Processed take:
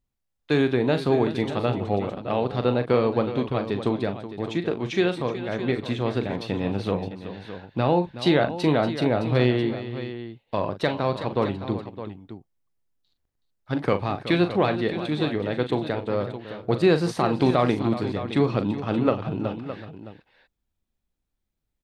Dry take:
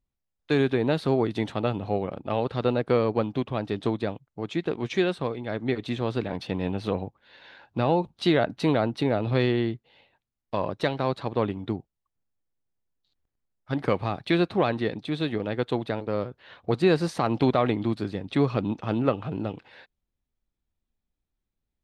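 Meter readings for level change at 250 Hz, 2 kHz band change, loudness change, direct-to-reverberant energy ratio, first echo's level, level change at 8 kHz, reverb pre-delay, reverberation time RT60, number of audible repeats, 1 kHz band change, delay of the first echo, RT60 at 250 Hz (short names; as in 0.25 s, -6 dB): +2.5 dB, +2.5 dB, +2.0 dB, none, -10.0 dB, n/a, none, none, 3, +2.5 dB, 40 ms, none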